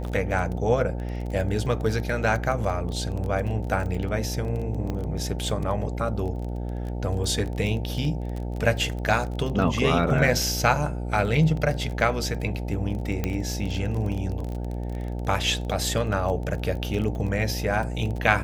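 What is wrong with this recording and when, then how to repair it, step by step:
buzz 60 Hz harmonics 15 -30 dBFS
crackle 21/s -30 dBFS
4.9 pop -20 dBFS
13.24 pop -12 dBFS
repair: de-click; de-hum 60 Hz, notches 15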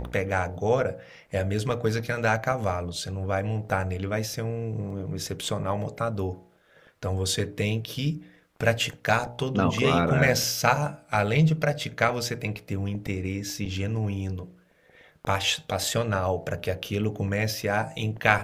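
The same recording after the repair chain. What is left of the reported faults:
4.9 pop

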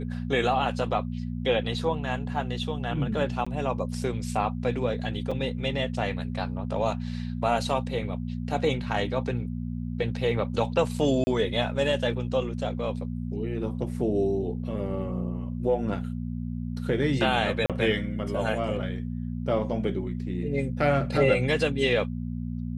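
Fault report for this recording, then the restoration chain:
hum 60 Hz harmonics 4 -32 dBFS
3.45–3.46 gap 15 ms
5.31–5.32 gap 5.1 ms
11.24–11.27 gap 30 ms
17.66–17.7 gap 37 ms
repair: de-hum 60 Hz, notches 4; interpolate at 3.45, 15 ms; interpolate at 5.31, 5.1 ms; interpolate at 11.24, 30 ms; interpolate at 17.66, 37 ms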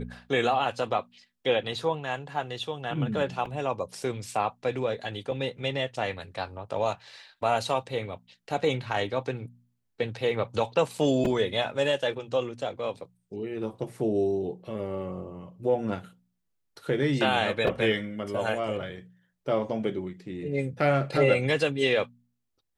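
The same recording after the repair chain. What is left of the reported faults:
none

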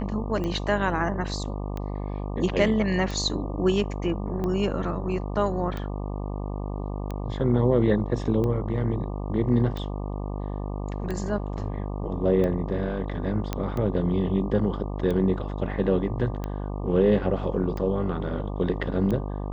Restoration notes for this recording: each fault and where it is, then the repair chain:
buzz 50 Hz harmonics 24 -31 dBFS
tick 45 rpm -19 dBFS
13.53 pop -13 dBFS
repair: de-click; de-hum 50 Hz, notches 24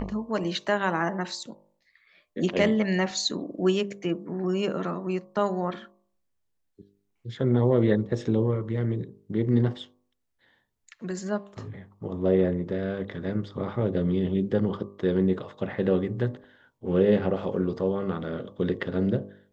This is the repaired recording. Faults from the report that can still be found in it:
none

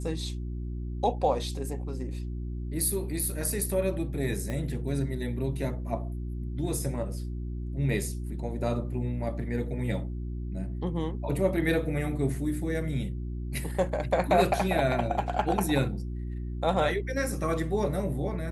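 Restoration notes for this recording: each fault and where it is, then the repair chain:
hum 60 Hz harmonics 6 -34 dBFS
4.5 pop -21 dBFS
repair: de-click; de-hum 60 Hz, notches 6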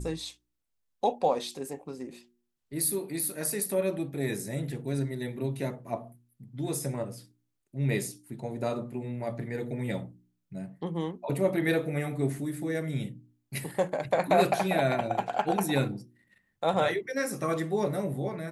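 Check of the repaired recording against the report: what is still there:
4.5 pop

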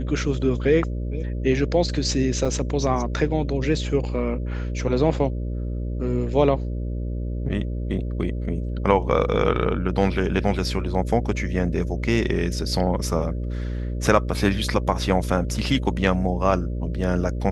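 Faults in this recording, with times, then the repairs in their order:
buzz 60 Hz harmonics 10 -27 dBFS
2.45 gap 3.8 ms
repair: de-hum 60 Hz, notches 10; interpolate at 2.45, 3.8 ms

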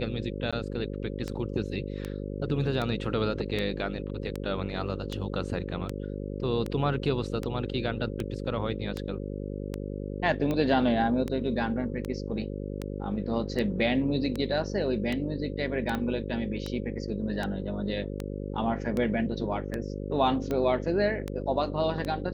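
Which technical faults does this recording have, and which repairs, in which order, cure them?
buzz 50 Hz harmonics 11 -35 dBFS
tick 78 rpm -18 dBFS
0.51–0.53 gap 16 ms
15.95 pop -18 dBFS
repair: de-click; de-hum 50 Hz, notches 11; interpolate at 0.51, 16 ms

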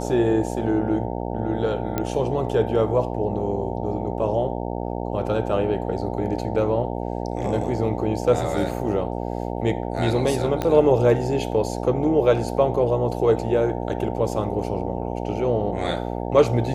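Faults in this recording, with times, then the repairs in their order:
buzz 60 Hz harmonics 15 -28 dBFS
1.98 pop -10 dBFS
10.62 pop -11 dBFS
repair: de-click; de-hum 60 Hz, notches 15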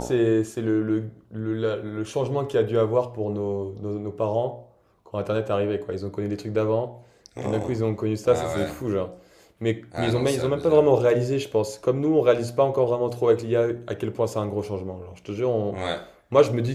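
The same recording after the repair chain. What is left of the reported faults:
10.62 pop

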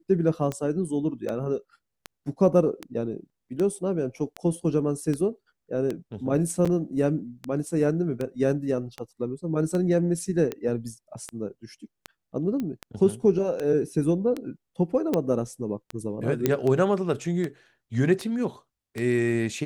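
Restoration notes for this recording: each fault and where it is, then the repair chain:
tick 78 rpm -17 dBFS
6.65–6.66 gap 6.3 ms
12.6 pop -19 dBFS
15.14 pop -12 dBFS
16.46 pop -8 dBFS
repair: de-click; interpolate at 6.65, 6.3 ms

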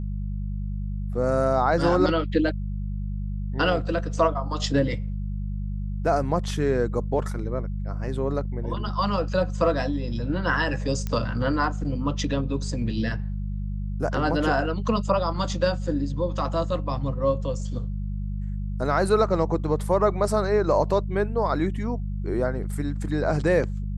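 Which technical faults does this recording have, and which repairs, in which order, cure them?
hum 50 Hz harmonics 4 -29 dBFS
11.07 pop -16 dBFS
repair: de-click; de-hum 50 Hz, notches 4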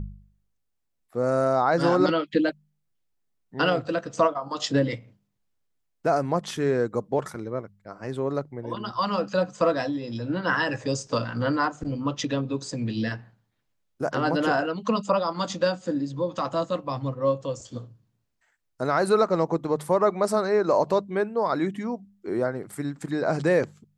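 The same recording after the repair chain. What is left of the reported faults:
11.07 pop

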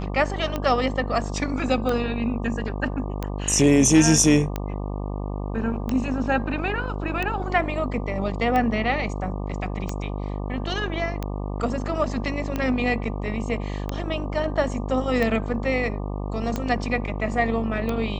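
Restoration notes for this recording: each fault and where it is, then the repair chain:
buzz 50 Hz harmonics 24 -29 dBFS
tick 45 rpm -13 dBFS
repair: de-click; de-hum 50 Hz, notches 24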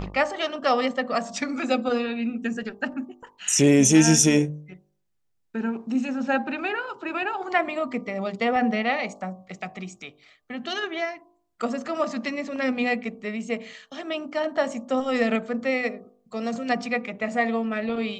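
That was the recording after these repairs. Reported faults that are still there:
none

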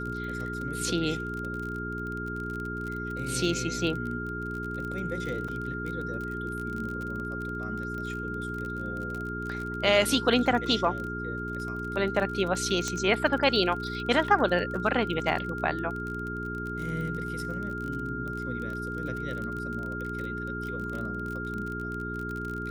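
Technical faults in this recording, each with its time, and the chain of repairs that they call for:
crackle 31/s -33 dBFS
hum 60 Hz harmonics 7 -36 dBFS
tone 1400 Hz -35 dBFS
5.48 gap 4.7 ms
12.88 pop -16 dBFS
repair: de-click; de-hum 60 Hz, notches 7; notch 1400 Hz, Q 30; interpolate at 5.48, 4.7 ms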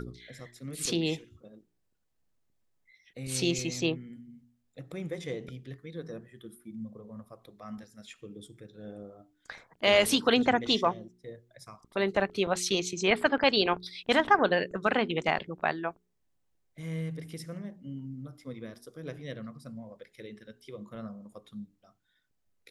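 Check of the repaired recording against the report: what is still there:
none

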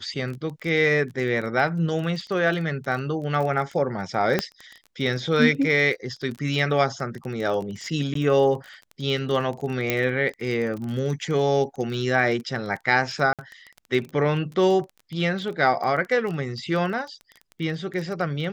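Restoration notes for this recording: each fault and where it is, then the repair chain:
crackle 22/s -30 dBFS
4.39 pop -7 dBFS
8.14–8.15 gap 13 ms
9.9 pop -7 dBFS
13.33–13.39 gap 57 ms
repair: de-click; interpolate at 8.14, 13 ms; interpolate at 13.33, 57 ms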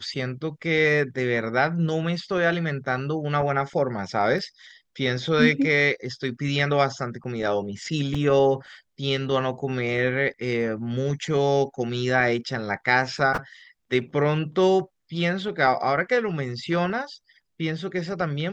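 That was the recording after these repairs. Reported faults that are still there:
4.39 pop

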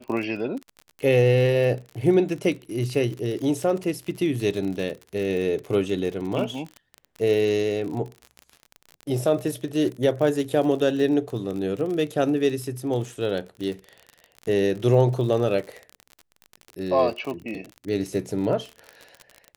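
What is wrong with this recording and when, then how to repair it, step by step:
crackle 45/s -30 dBFS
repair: de-click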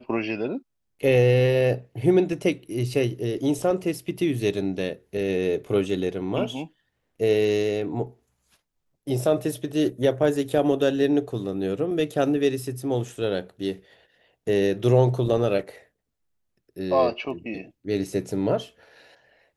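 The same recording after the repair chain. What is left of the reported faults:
none

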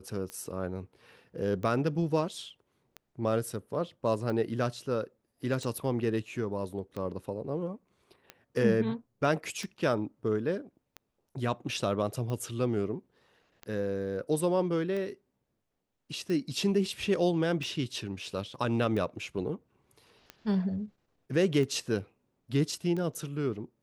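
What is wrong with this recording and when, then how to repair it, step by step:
tick 45 rpm -25 dBFS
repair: de-click

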